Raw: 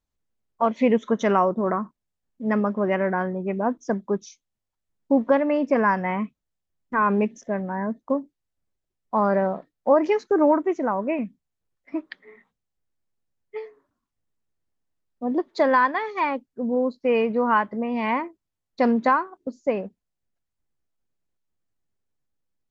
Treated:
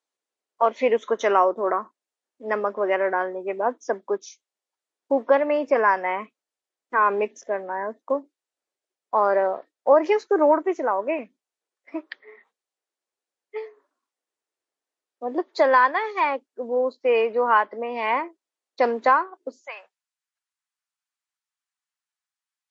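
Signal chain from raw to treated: high-pass 360 Hz 24 dB/octave, from 19.62 s 1 kHz; trim +2.5 dB; MP3 40 kbps 24 kHz

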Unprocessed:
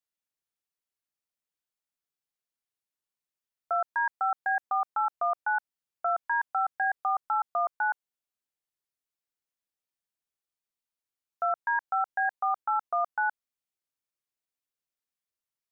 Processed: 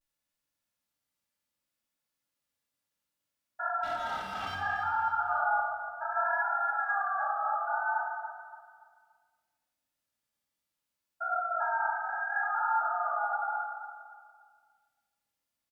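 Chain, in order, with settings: spectrogram pixelated in time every 400 ms; in parallel at -2.5 dB: peak limiter -34.5 dBFS, peak gain reduction 11 dB; 3.84–4.54 s: on the sum: hard clipper -35.5 dBFS, distortion -16 dB; comb of notches 380 Hz; vibrato 0.65 Hz 72 cents; on a send: feedback delay 287 ms, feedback 36%, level -11 dB; on the sum: simulated room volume 1400 m³, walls mixed, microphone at 2.4 m

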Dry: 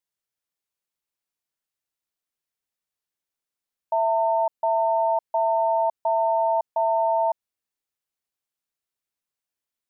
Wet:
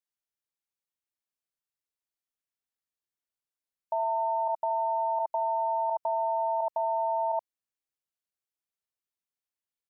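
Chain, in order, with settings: delay 73 ms -8.5 dB; 4.03–6.07 s: dynamic bell 670 Hz, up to -3 dB, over -31 dBFS, Q 2.6; level held to a coarse grid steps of 17 dB; trim +6 dB

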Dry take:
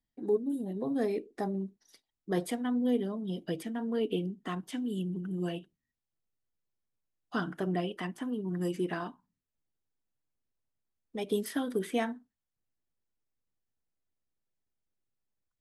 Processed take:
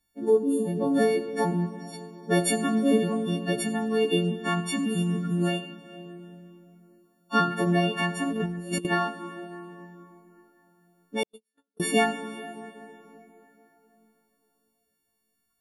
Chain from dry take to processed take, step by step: partials quantised in pitch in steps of 4 st; treble shelf 4.4 kHz -6 dB; plate-style reverb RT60 3.6 s, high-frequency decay 0.6×, DRR 9.5 dB; 8.31–8.85 s: compressor with a negative ratio -37 dBFS, ratio -0.5; 11.23–11.80 s: gate -23 dBFS, range -60 dB; trim +7.5 dB

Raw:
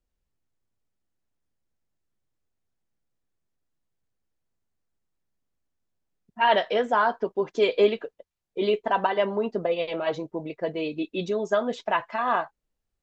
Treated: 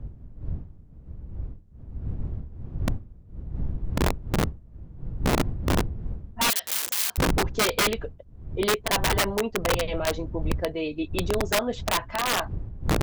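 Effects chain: wind noise 81 Hz -27 dBFS; integer overflow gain 16.5 dB; 6.50–7.18 s: differentiator

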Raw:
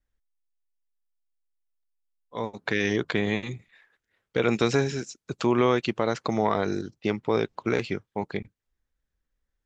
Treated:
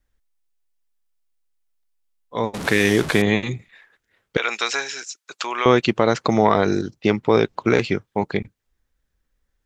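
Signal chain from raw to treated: 2.54–3.22 s: one-bit delta coder 64 kbps, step -31.5 dBFS; 4.37–5.66 s: high-pass 1.1 kHz 12 dB/octave; trim +8 dB

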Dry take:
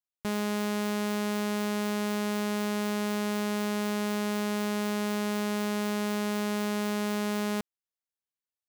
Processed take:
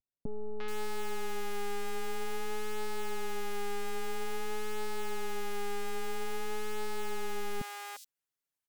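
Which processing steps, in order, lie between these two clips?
one-sided wavefolder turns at -34 dBFS; comb 7.3 ms, depth 92%; vibrato 0.5 Hz 33 cents; three bands offset in time lows, mids, highs 350/430 ms, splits 630/4300 Hz; trim +1 dB

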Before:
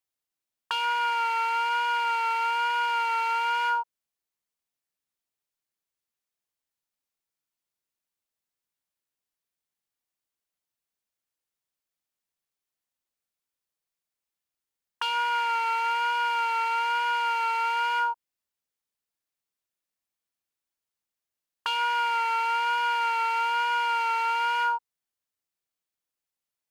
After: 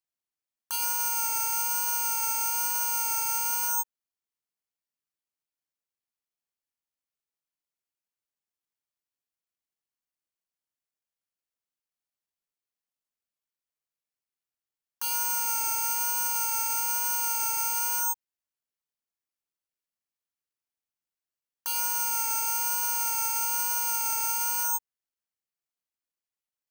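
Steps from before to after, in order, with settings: peak limiter -23 dBFS, peak gain reduction 7 dB; careless resampling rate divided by 6×, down filtered, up zero stuff; trim -6 dB

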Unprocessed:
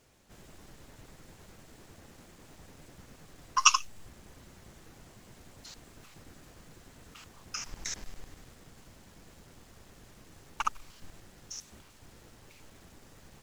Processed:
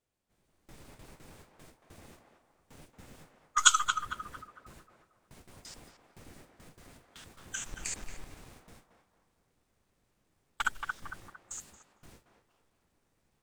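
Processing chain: gate with hold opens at -42 dBFS; band-passed feedback delay 227 ms, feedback 45%, band-pass 780 Hz, level -4 dB; formant shift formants +3 st

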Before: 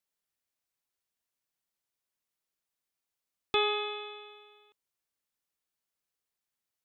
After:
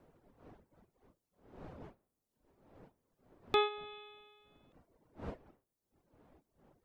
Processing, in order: wind noise 510 Hz -56 dBFS; reverb removal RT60 0.94 s; dynamic bell 3 kHz, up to -8 dB, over -49 dBFS, Q 1.8

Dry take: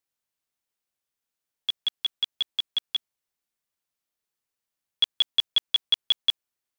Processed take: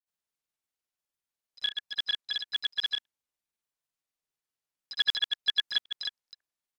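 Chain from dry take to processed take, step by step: harmony voices -12 st -9 dB, +3 st -12 dB, +7 st -14 dB; granulator, spray 100 ms, pitch spread up and down by 0 st; trim -4 dB

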